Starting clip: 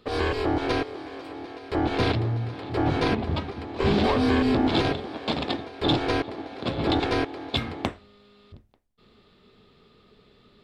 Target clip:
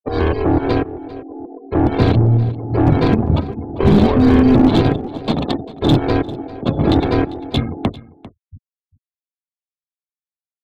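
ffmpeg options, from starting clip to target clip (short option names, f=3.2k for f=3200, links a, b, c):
-filter_complex "[0:a]afftfilt=real='re*gte(hypot(re,im),0.0316)':imag='im*gte(hypot(re,im),0.0316)':win_size=1024:overlap=0.75,acrossover=split=120|1200[a][b][c];[b]acontrast=56[d];[a][d][c]amix=inputs=3:normalize=0,bass=f=250:g=9,treble=f=4k:g=5,acrossover=split=470[e][f];[f]acompressor=threshold=-20dB:ratio=10[g];[e][g]amix=inputs=2:normalize=0,aeval=exprs='0.501*(cos(1*acos(clip(val(0)/0.501,-1,1)))-cos(1*PI/2))+0.0631*(cos(2*acos(clip(val(0)/0.501,-1,1)))-cos(2*PI/2))+0.0224*(cos(7*acos(clip(val(0)/0.501,-1,1)))-cos(7*PI/2))':c=same,asplit=2[h][i];[i]aecho=0:1:397:0.119[j];[h][j]amix=inputs=2:normalize=0,volume=1.5dB"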